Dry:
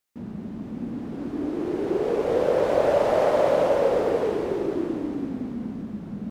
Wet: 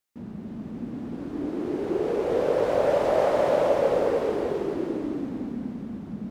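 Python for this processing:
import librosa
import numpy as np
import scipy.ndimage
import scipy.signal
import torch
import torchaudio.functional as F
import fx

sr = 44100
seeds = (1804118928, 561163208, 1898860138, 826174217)

y = x + 10.0 ** (-6.0 / 20.0) * np.pad(x, (int(309 * sr / 1000.0), 0))[:len(x)]
y = y * librosa.db_to_amplitude(-2.5)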